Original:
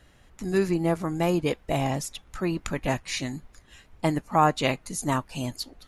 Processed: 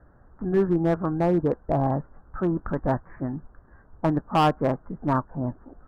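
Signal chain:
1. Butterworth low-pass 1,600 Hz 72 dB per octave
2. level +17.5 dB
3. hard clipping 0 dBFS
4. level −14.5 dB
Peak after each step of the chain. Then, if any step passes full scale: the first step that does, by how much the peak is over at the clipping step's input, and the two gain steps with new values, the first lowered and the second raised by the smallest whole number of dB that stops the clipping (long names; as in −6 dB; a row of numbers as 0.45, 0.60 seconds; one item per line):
−8.5, +9.0, 0.0, −14.5 dBFS
step 2, 9.0 dB
step 2 +8.5 dB, step 4 −5.5 dB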